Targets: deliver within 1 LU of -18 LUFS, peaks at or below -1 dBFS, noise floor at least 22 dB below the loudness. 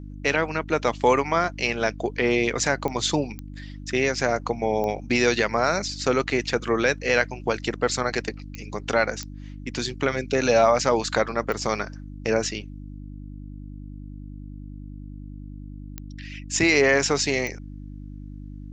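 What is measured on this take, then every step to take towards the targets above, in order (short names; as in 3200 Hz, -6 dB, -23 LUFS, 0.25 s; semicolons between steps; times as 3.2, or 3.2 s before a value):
clicks 8; hum 50 Hz; harmonics up to 300 Hz; hum level -35 dBFS; loudness -23.5 LUFS; peak -5.0 dBFS; loudness target -18.0 LUFS
-> de-click; de-hum 50 Hz, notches 6; gain +5.5 dB; limiter -1 dBFS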